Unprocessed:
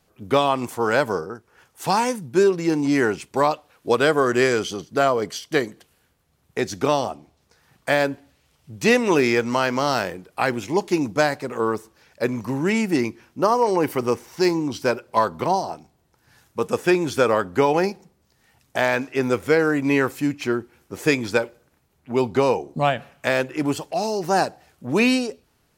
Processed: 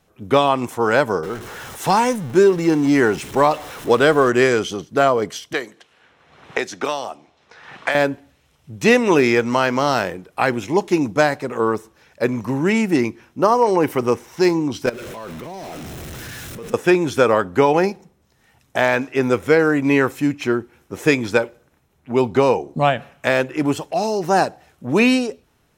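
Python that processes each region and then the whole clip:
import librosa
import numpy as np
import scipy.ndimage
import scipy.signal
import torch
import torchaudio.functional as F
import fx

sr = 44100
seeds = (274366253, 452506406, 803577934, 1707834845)

y = fx.chain(x, sr, fx.zero_step(step_db=-32.0),
    fx.notch(hz=2500.0, q=23.0), at=(1.23, 4.3))
y = fx.chain(y, sr, fx.env_lowpass(base_hz=2900.0, full_db=-19.0),
    fx.highpass(hz=770.0, slope=6),
    fx.band_squash(depth_pct=100), at=(5.53, 7.95))
y = fx.chain(y, sr, fx.zero_step(step_db=-25.0),
    fx.peak_eq(hz=900.0, db=-8.5, octaves=0.8),
    fx.level_steps(step_db=18), at=(14.86, 16.74))
y = fx.high_shelf(y, sr, hz=5800.0, db=-4.5)
y = fx.notch(y, sr, hz=4600.0, q=10.0)
y = y * 10.0 ** (3.5 / 20.0)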